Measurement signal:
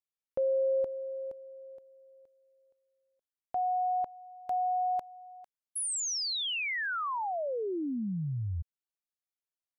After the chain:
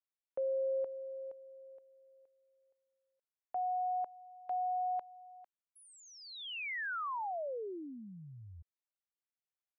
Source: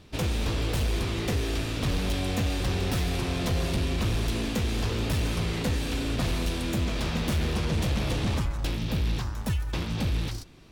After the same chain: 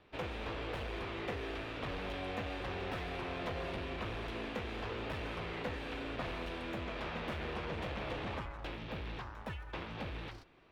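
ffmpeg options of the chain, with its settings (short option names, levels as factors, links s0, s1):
-filter_complex "[0:a]acrossover=split=380 3000:gain=0.224 1 0.0708[s0][s1][s2];[s0][s1][s2]amix=inputs=3:normalize=0,volume=0.596"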